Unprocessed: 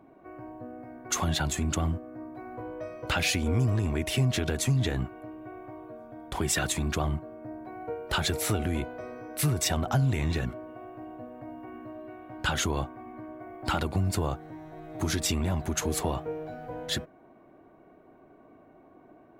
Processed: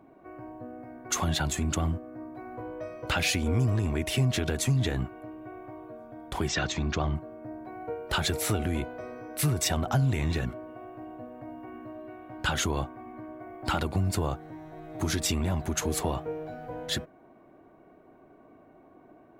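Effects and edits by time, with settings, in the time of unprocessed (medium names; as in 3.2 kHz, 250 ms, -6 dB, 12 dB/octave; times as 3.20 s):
6.48–7.16 s: steep low-pass 6.5 kHz 48 dB/octave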